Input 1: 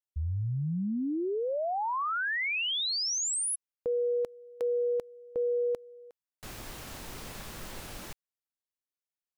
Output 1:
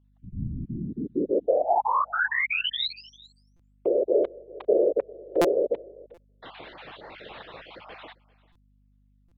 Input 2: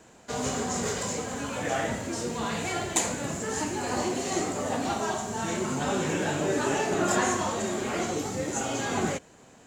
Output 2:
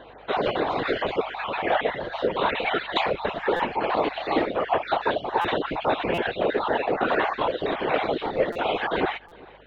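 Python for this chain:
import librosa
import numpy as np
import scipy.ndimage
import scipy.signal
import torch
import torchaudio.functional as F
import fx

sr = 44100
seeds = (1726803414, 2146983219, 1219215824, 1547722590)

p1 = fx.spec_dropout(x, sr, seeds[0], share_pct=28)
p2 = scipy.signal.sosfilt(scipy.signal.cheby1(5, 1.0, [100.0, 3800.0], 'bandpass', fs=sr, output='sos'), p1)
p3 = fx.dereverb_blind(p2, sr, rt60_s=0.67)
p4 = fx.low_shelf_res(p3, sr, hz=330.0, db=-8.5, q=1.5)
p5 = fx.rider(p4, sr, range_db=3, speed_s=0.5)
p6 = fx.whisperise(p5, sr, seeds[1])
p7 = fx.add_hum(p6, sr, base_hz=50, snr_db=34)
p8 = p7 + fx.echo_single(p7, sr, ms=396, db=-23.0, dry=0)
p9 = fx.buffer_glitch(p8, sr, at_s=(3.56, 5.41, 6.14, 8.52, 9.28), block=256, repeats=5)
y = p9 * librosa.db_to_amplitude(8.0)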